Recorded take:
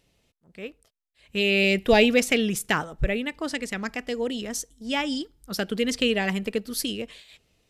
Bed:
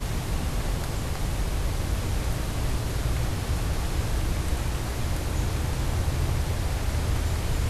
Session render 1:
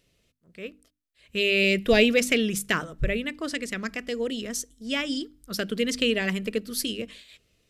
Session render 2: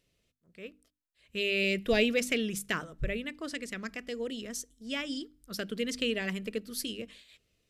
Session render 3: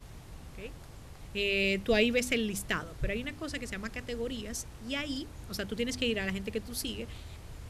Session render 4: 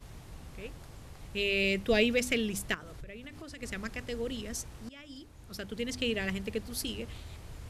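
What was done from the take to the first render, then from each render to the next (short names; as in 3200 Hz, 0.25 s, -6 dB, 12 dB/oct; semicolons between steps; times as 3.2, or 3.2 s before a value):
bell 830 Hz -12.5 dB 0.38 oct; notches 50/100/150/200/250/300 Hz
gain -7 dB
add bed -19.5 dB
2.74–3.63 compressor 8:1, threshold -41 dBFS; 4.89–6.22 fade in, from -19.5 dB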